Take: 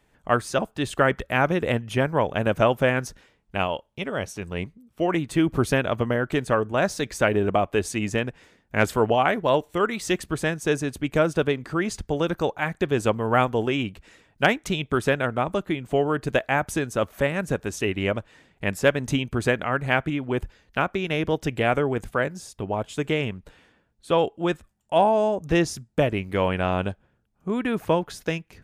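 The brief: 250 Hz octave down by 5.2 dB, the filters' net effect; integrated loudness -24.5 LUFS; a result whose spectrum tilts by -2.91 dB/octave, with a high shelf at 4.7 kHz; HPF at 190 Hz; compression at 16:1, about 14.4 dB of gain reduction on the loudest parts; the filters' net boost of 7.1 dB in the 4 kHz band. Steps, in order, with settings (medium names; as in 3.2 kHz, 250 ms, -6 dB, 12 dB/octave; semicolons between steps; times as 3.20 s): high-pass 190 Hz; peaking EQ 250 Hz -5.5 dB; peaking EQ 4 kHz +8 dB; treble shelf 4.7 kHz +4.5 dB; compression 16:1, threshold -28 dBFS; trim +9.5 dB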